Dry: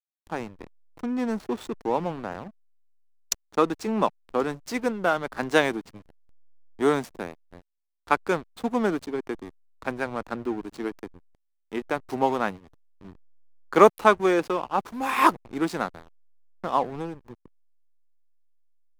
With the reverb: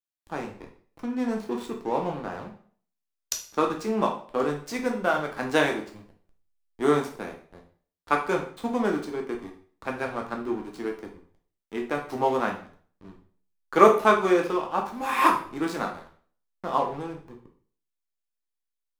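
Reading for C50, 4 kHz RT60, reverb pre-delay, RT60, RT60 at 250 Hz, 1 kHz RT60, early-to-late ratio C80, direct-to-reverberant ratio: 8.0 dB, 0.45 s, 5 ms, 0.45 s, 0.45 s, 0.45 s, 13.5 dB, 1.0 dB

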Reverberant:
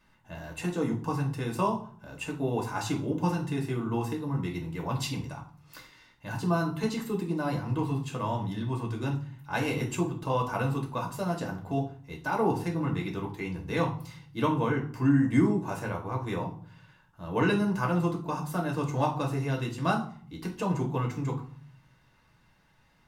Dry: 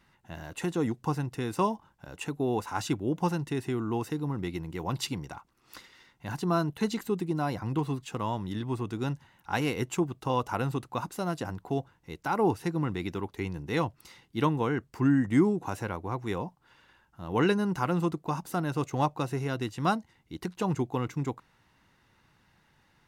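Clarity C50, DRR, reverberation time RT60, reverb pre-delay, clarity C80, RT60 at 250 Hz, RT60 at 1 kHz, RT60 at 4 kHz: 10.5 dB, -1.0 dB, 0.50 s, 3 ms, 14.5 dB, 0.80 s, 0.50 s, 0.35 s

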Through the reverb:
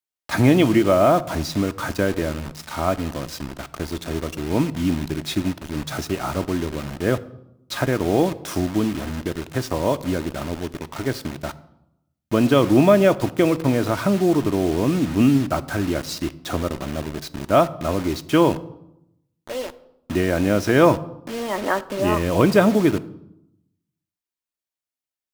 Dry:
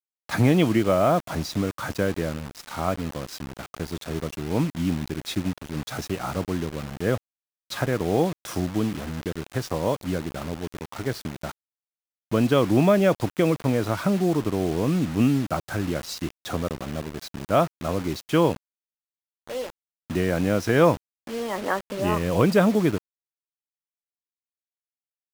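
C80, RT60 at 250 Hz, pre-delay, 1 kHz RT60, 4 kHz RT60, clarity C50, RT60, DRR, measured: 20.5 dB, 1.1 s, 3 ms, 0.80 s, 0.60 s, 18.5 dB, 0.85 s, 11.5 dB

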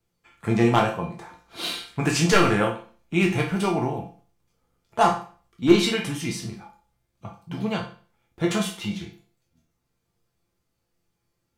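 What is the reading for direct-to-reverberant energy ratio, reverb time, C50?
-1.5 dB, 0.40 s, 7.5 dB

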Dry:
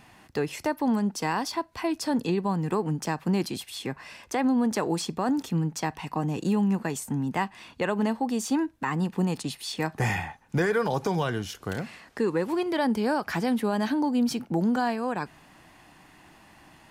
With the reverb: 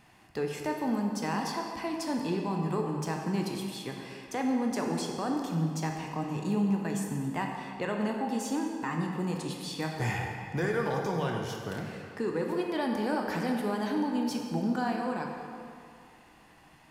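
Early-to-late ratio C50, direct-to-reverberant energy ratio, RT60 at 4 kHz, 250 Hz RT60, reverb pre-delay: 2.5 dB, 1.0 dB, 1.7 s, 2.1 s, 13 ms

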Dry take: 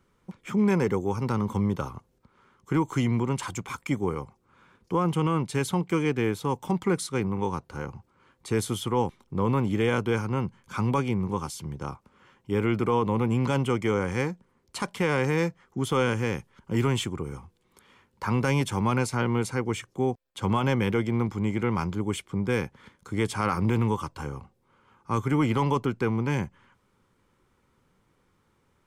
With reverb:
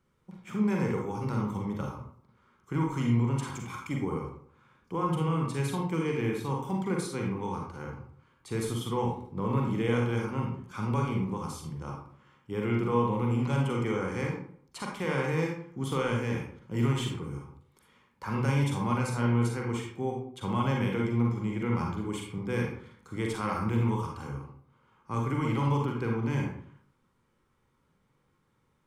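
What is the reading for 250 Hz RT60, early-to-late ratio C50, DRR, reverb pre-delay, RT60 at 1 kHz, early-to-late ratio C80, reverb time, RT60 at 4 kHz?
0.65 s, 2.5 dB, -0.5 dB, 37 ms, 0.55 s, 7.0 dB, 0.60 s, 0.35 s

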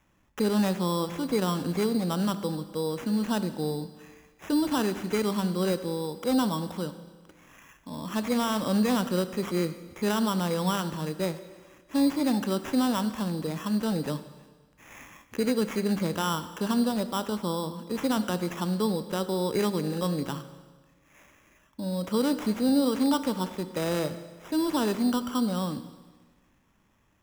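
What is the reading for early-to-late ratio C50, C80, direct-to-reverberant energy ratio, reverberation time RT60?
12.5 dB, 14.0 dB, 11.5 dB, 1.4 s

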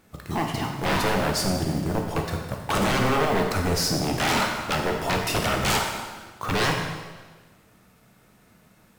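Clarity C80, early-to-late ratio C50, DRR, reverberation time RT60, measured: 5.5 dB, 4.0 dB, 1.0 dB, 1.4 s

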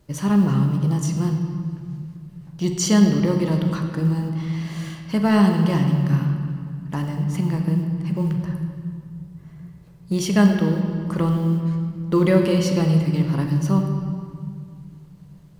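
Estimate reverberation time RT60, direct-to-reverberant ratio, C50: 2.2 s, 3.0 dB, 5.0 dB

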